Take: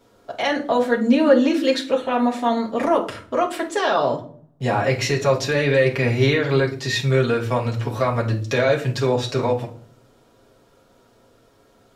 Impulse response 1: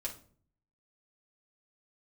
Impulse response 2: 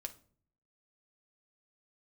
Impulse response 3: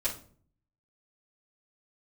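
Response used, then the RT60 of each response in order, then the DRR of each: 1; 0.50, 0.50, 0.50 s; -3.5, 5.0, -9.5 dB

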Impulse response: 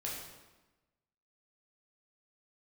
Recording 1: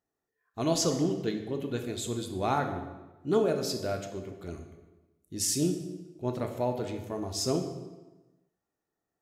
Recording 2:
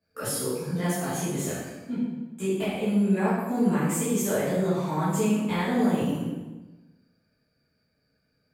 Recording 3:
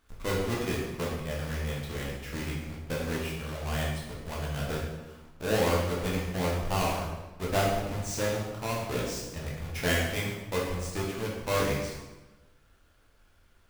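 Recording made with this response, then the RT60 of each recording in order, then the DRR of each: 3; 1.1, 1.1, 1.1 s; 4.5, -13.0, -4.5 dB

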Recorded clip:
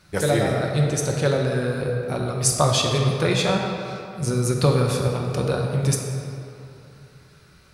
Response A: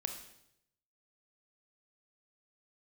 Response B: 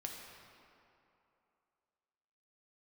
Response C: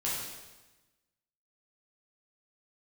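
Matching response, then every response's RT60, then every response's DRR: B; 0.75, 2.9, 1.1 s; 5.0, 0.0, -7.5 dB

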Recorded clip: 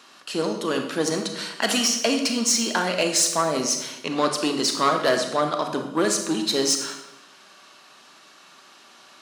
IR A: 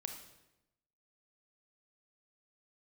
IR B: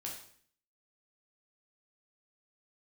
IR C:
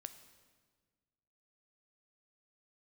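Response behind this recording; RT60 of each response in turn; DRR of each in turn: A; 0.95, 0.55, 1.5 s; 4.5, -2.5, 9.5 dB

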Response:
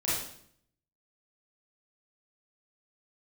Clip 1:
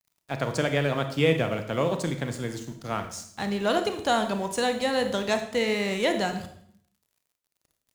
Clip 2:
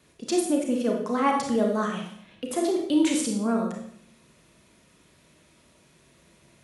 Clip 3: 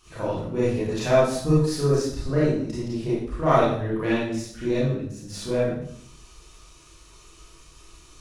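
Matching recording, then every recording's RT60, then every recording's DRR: 3; 0.65, 0.65, 0.65 s; 6.5, 0.0, -9.0 dB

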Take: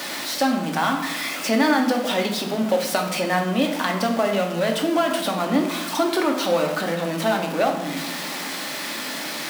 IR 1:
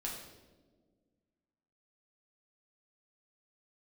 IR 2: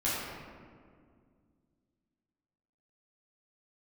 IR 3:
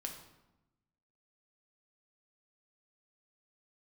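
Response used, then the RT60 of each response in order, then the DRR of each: 3; not exponential, 2.0 s, 0.95 s; -3.5, -11.5, 1.5 dB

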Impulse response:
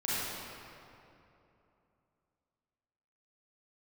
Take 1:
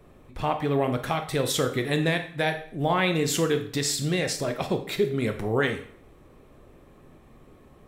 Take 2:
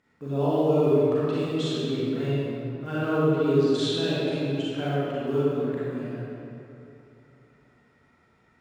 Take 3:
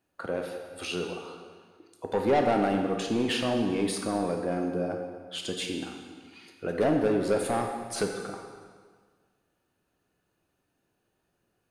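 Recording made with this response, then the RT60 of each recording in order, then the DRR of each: 2; 0.55, 2.9, 1.6 s; 6.5, -10.0, 2.5 dB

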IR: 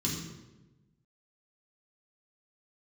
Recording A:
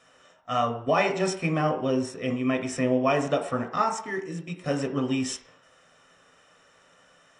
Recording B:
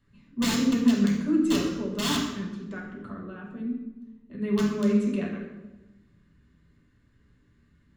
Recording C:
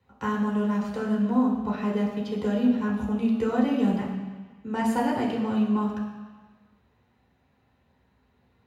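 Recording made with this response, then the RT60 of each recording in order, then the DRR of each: B; 0.60, 1.1, 1.4 s; 4.0, -4.5, -5.0 dB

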